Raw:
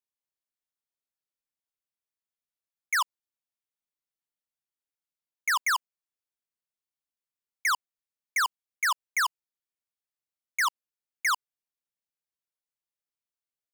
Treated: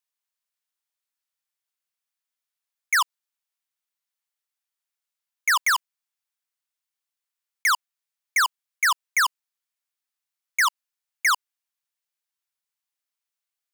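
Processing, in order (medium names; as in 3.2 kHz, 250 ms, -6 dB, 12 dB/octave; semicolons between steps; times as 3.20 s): 5.59–7.72 s: block-companded coder 3-bit; high-pass 900 Hz 12 dB/octave; trim +6 dB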